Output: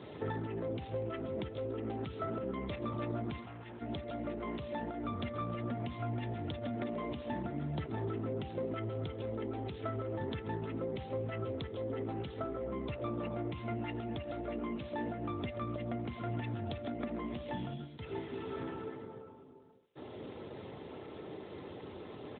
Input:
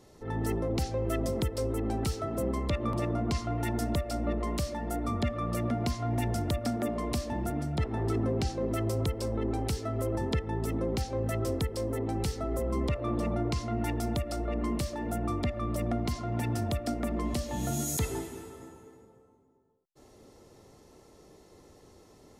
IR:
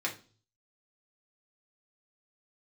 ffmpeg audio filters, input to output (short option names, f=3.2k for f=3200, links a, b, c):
-filter_complex "[0:a]crystalizer=i=3:c=0,alimiter=limit=-18.5dB:level=0:latency=1:release=212,acompressor=threshold=-43dB:ratio=16,bandreject=f=370.6:t=h:w=4,bandreject=f=741.2:t=h:w=4,bandreject=f=1.1118k:t=h:w=4,bandreject=f=1.4824k:t=h:w=4,bandreject=f=1.853k:t=h:w=4,bandreject=f=2.2236k:t=h:w=4,bandreject=f=2.5942k:t=h:w=4,bandreject=f=2.9648k:t=h:w=4,bandreject=f=3.3354k:t=h:w=4,bandreject=f=3.706k:t=h:w=4,bandreject=f=4.0766k:t=h:w=4,bandreject=f=4.4472k:t=h:w=4,bandreject=f=4.8178k:t=h:w=4,bandreject=f=5.1884k:t=h:w=4,bandreject=f=5.559k:t=h:w=4,bandreject=f=5.9296k:t=h:w=4,bandreject=f=6.3002k:t=h:w=4,bandreject=f=6.6708k:t=h:w=4,bandreject=f=7.0414k:t=h:w=4,bandreject=f=7.412k:t=h:w=4,bandreject=f=7.7826k:t=h:w=4,bandreject=f=8.1532k:t=h:w=4,bandreject=f=8.5238k:t=h:w=4,bandreject=f=8.8944k:t=h:w=4,bandreject=f=9.265k:t=h:w=4,bandreject=f=9.6356k:t=h:w=4,bandreject=f=10.0062k:t=h:w=4,bandreject=f=10.3768k:t=h:w=4,bandreject=f=10.7474k:t=h:w=4,bandreject=f=11.118k:t=h:w=4,bandreject=f=11.4886k:t=h:w=4,bandreject=f=11.8592k:t=h:w=4,bandreject=f=12.2298k:t=h:w=4,bandreject=f=12.6004k:t=h:w=4,asplit=3[a][b][c];[a]afade=t=out:st=3.4:d=0.02[d];[b]aeval=exprs='(tanh(562*val(0)+0.15)-tanh(0.15))/562':c=same,afade=t=in:st=3.4:d=0.02,afade=t=out:st=3.8:d=0.02[e];[c]afade=t=in:st=3.8:d=0.02[f];[d][e][f]amix=inputs=3:normalize=0,asplit=2[g][h];[h]adelay=134.1,volume=-14dB,highshelf=f=4k:g=-3.02[i];[g][i]amix=inputs=2:normalize=0,asplit=2[j][k];[1:a]atrim=start_sample=2205,afade=t=out:st=0.27:d=0.01,atrim=end_sample=12348,asetrate=48510,aresample=44100[l];[k][l]afir=irnorm=-1:irlink=0,volume=-16dB[m];[j][m]amix=inputs=2:normalize=0,volume=9.5dB" -ar 8000 -c:a libopencore_amrnb -b:a 12200